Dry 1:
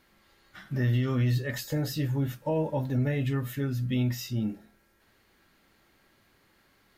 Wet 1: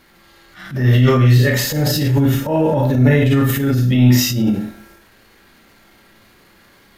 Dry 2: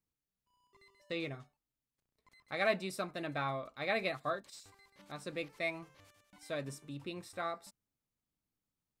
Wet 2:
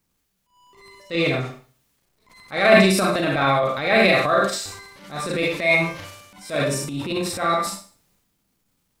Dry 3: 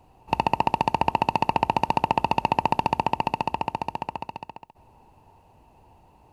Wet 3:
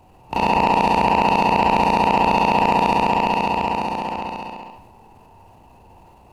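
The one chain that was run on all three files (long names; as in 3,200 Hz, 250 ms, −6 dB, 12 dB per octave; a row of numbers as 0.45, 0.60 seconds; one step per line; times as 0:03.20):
four-comb reverb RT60 0.41 s, combs from 32 ms, DRR 0.5 dB
transient designer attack −10 dB, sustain +6 dB
normalise the peak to −1.5 dBFS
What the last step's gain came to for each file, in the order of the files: +12.0, +16.5, +5.0 decibels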